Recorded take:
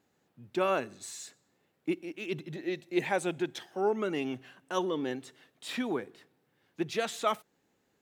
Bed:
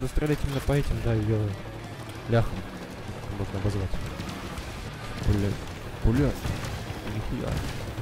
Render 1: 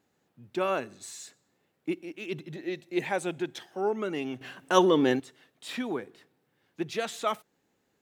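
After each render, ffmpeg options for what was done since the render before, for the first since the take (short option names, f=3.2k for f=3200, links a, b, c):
-filter_complex "[0:a]asplit=3[a][b][c];[a]atrim=end=4.412[d];[b]atrim=start=4.408:end=5.202,asetpts=PTS-STARTPTS,volume=10dB[e];[c]atrim=start=5.198[f];[d][e]acrossfade=d=0.004:c1=hsin:c2=hsin[g];[g][f]acrossfade=d=0.004:c1=hsin:c2=hsin"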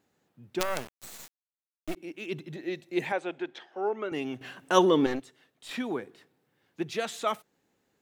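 -filter_complex "[0:a]asplit=3[a][b][c];[a]afade=t=out:st=0.59:d=0.02[d];[b]acrusher=bits=4:dc=4:mix=0:aa=0.000001,afade=t=in:st=0.59:d=0.02,afade=t=out:st=1.95:d=0.02[e];[c]afade=t=in:st=1.95:d=0.02[f];[d][e][f]amix=inputs=3:normalize=0,asettb=1/sr,asplit=3[g][h][i];[g]atrim=end=3.124[j];[h]atrim=start=3.12:end=4.12,asetpts=PTS-STARTPTS,afade=t=in:d=0.004:c=qsin,afade=t=out:st=0.996:d=0.004:c=qsin,highpass=340,lowpass=3.2k[k];[i]atrim=start=4.116[l];[j][k]acrossfade=d=0.004:c1=hsin:c2=qsin[m];[m][l]acrossfade=d=0.004:c1=qsin:c2=hsin,asettb=1/sr,asplit=3[n][o][p];[n]atrim=end=5.064[q];[o]atrim=start=5.06:end=5.71,asetpts=PTS-STARTPTS,afade=t=in:d=0.004:c=qsin,afade=t=out:st=0.646:d=0.004:c=qsin,aeval=exprs='(tanh(17.8*val(0)+0.65)-tanh(0.65))/17.8':c=same[r];[p]atrim=start=5.706[s];[q][r]acrossfade=d=0.004:c1=hsin:c2=qsin[t];[t][s]acrossfade=d=0.004:c1=qsin:c2=hsin"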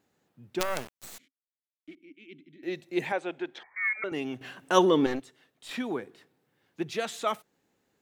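-filter_complex "[0:a]asettb=1/sr,asplit=3[a][b][c];[a]atrim=end=1.184[d];[b]atrim=start=1.18:end=2.63,asetpts=PTS-STARTPTS,afade=t=in:d=0.004:c=qsin,afade=t=out:st=1.446:d=0.004:c=qsin,asplit=3[e][f][g];[e]bandpass=f=270:t=q:w=8,volume=0dB[h];[f]bandpass=f=2.29k:t=q:w=8,volume=-6dB[i];[g]bandpass=f=3.01k:t=q:w=8,volume=-9dB[j];[h][i][j]amix=inputs=3:normalize=0[k];[c]atrim=start=2.626[l];[d][k]acrossfade=d=0.004:c1=hsin:c2=qsin[m];[m][l]acrossfade=d=0.004:c1=qsin:c2=hsin,asettb=1/sr,asplit=3[n][o][p];[n]atrim=end=3.634[q];[o]atrim=start=3.63:end=4.04,asetpts=PTS-STARTPTS,afade=t=in:d=0.004:c=qsin,afade=t=out:st=0.406:d=0.004:c=qsin,lowpass=f=2.2k:t=q:w=0.5098,lowpass=f=2.2k:t=q:w=0.6013,lowpass=f=2.2k:t=q:w=0.9,lowpass=f=2.2k:t=q:w=2.563,afreqshift=-2600[r];[p]atrim=start=4.036[s];[q][r]acrossfade=d=0.004:c1=hsin:c2=qsin[t];[t][s]acrossfade=d=0.004:c1=qsin:c2=hsin"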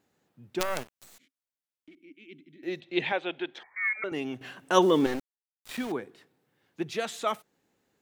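-filter_complex "[0:a]asettb=1/sr,asplit=3[a][b][c];[a]atrim=end=0.834[d];[b]atrim=start=0.83:end=2.01,asetpts=PTS-STARTPTS,afade=t=in:d=0.004:c=qsin,afade=t=out:st=1.176:d=0.004:c=qsin,acompressor=threshold=-47dB:ratio=12:attack=3.2:release=140:knee=1:detection=peak[e];[c]atrim=start=2.006[f];[d][e]acrossfade=d=0.004:c1=hsin:c2=qsin[g];[g][f]acrossfade=d=0.004:c1=qsin:c2=hsin,asettb=1/sr,asplit=3[h][i][j];[h]atrim=end=2.804[k];[i]atrim=start=2.8:end=3.54,asetpts=PTS-STARTPTS,afade=t=in:d=0.004:c=qsin,afade=t=out:st=0.736:d=0.004:c=qsin,lowpass=f=3.4k:t=q:w=3.3[l];[j]atrim=start=3.536[m];[k][l]acrossfade=d=0.004:c1=hsin:c2=qsin[n];[n][m]acrossfade=d=0.004:c1=qsin:c2=hsin,asettb=1/sr,asplit=3[o][p][q];[o]atrim=end=4.824[r];[p]atrim=start=4.82:end=5.92,asetpts=PTS-STARTPTS,afade=t=in:d=0.004:c=qsin,afade=t=out:st=1.096:d=0.004:c=qsin,aeval=exprs='val(0)*gte(abs(val(0)),0.0126)':c=same[s];[q]atrim=start=5.916[t];[r][s]acrossfade=d=0.004:c1=hsin:c2=qsin[u];[u][t]acrossfade=d=0.004:c1=qsin:c2=hsin"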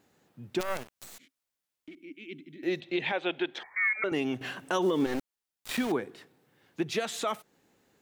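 -filter_complex "[0:a]asplit=2[a][b];[b]acompressor=threshold=-35dB:ratio=6,volume=0dB[c];[a][c]amix=inputs=2:normalize=0,alimiter=limit=-19dB:level=0:latency=1:release=136"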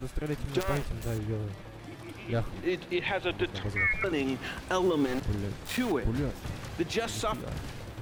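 -filter_complex "[1:a]volume=-7.5dB[a];[0:a][a]amix=inputs=2:normalize=0"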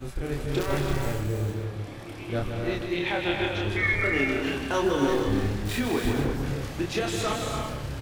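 -filter_complex "[0:a]asplit=2[a][b];[b]adelay=29,volume=-3dB[c];[a][c]amix=inputs=2:normalize=0,aecho=1:1:156|234|278|336|459:0.422|0.376|0.422|0.501|0.237"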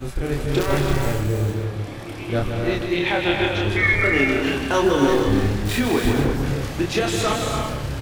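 -af "volume=6.5dB"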